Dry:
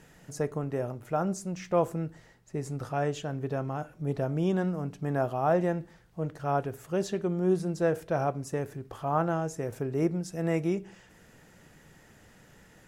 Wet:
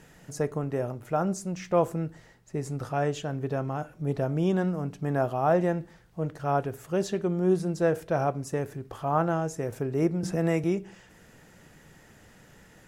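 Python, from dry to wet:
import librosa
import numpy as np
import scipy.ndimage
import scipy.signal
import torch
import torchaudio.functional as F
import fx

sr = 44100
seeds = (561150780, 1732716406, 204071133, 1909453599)

y = fx.band_squash(x, sr, depth_pct=70, at=(10.23, 10.64))
y = F.gain(torch.from_numpy(y), 2.0).numpy()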